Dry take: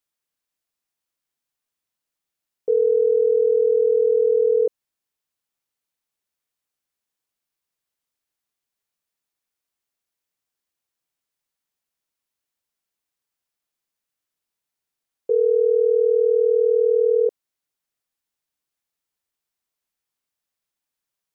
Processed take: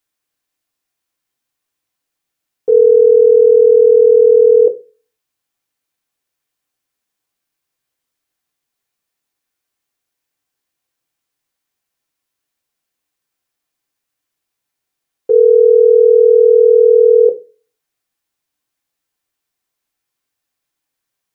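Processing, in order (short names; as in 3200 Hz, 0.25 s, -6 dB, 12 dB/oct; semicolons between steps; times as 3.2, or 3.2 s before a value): dynamic EQ 480 Hz, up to +3 dB, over -26 dBFS; on a send: reverb RT60 0.30 s, pre-delay 3 ms, DRR 3.5 dB; on the sum: gain +6 dB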